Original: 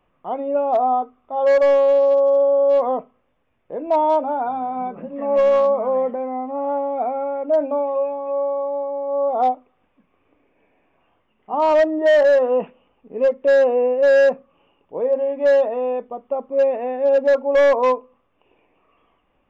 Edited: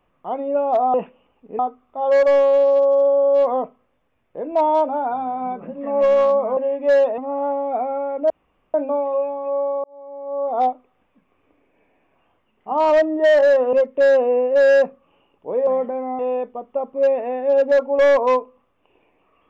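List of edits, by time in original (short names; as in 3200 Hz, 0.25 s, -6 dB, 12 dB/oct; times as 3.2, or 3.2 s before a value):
5.92–6.44 swap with 15.14–15.75
7.56 insert room tone 0.44 s
8.66–9.51 fade in
12.55–13.2 move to 0.94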